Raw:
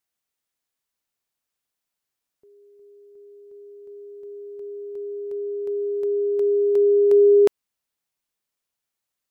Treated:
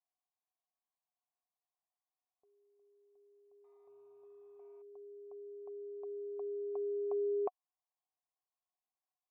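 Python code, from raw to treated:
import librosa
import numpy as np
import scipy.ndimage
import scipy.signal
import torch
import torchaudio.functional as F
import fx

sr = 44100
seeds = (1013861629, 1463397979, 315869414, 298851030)

y = fx.delta_mod(x, sr, bps=32000, step_db=-45.0, at=(3.64, 4.82))
y = fx.formant_cascade(y, sr, vowel='a')
y = y * 10.0 ** (3.0 / 20.0)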